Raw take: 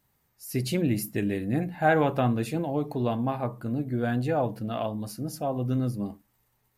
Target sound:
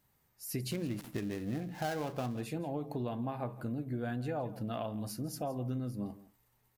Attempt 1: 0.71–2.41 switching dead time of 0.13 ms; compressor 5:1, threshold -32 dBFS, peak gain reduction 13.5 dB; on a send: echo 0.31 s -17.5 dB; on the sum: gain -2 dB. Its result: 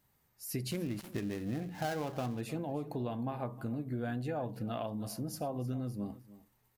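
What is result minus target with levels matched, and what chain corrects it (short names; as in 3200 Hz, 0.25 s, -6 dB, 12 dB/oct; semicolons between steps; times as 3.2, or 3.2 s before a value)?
echo 0.143 s late
0.71–2.41 switching dead time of 0.13 ms; compressor 5:1, threshold -32 dBFS, peak gain reduction 13.5 dB; on a send: echo 0.167 s -17.5 dB; on the sum: gain -2 dB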